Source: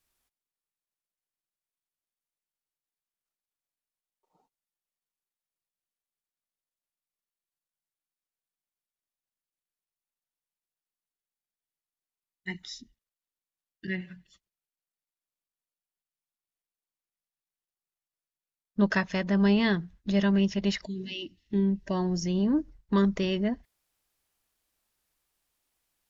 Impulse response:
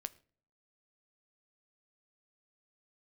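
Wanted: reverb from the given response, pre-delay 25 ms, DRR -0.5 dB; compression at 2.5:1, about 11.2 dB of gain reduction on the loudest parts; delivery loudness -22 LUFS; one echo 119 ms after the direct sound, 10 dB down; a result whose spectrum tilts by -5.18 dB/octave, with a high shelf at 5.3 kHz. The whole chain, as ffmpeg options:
-filter_complex "[0:a]highshelf=f=5300:g=-3.5,acompressor=threshold=0.0158:ratio=2.5,aecho=1:1:119:0.316,asplit=2[s0][s1];[1:a]atrim=start_sample=2205,adelay=25[s2];[s1][s2]afir=irnorm=-1:irlink=0,volume=1.5[s3];[s0][s3]amix=inputs=2:normalize=0,volume=3.76"

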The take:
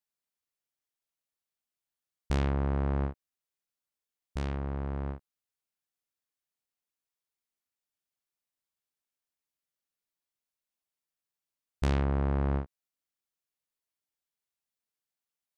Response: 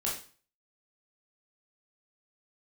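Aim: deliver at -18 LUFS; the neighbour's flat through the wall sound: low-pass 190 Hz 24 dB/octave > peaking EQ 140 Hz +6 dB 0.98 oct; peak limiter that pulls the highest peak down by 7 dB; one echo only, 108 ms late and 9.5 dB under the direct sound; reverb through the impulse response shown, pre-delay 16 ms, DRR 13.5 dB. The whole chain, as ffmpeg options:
-filter_complex "[0:a]alimiter=level_in=1.26:limit=0.0631:level=0:latency=1,volume=0.794,aecho=1:1:108:0.335,asplit=2[s0][s1];[1:a]atrim=start_sample=2205,adelay=16[s2];[s1][s2]afir=irnorm=-1:irlink=0,volume=0.119[s3];[s0][s3]amix=inputs=2:normalize=0,lowpass=f=190:w=0.5412,lowpass=f=190:w=1.3066,equalizer=f=140:t=o:w=0.98:g=6,volume=5.96"

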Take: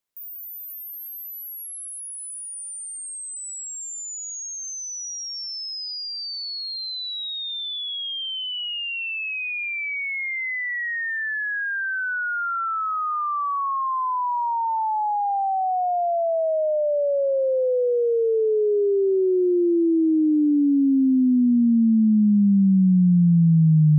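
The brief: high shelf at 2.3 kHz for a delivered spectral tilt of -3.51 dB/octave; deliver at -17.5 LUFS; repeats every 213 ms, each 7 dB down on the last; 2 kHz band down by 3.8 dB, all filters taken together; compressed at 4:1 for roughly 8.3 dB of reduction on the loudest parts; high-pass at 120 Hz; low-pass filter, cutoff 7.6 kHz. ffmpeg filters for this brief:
-af "highpass=120,lowpass=7600,equalizer=f=2000:t=o:g=-7,highshelf=f=2300:g=4,acompressor=threshold=0.0501:ratio=4,aecho=1:1:213|426|639|852|1065:0.447|0.201|0.0905|0.0407|0.0183,volume=2.82"

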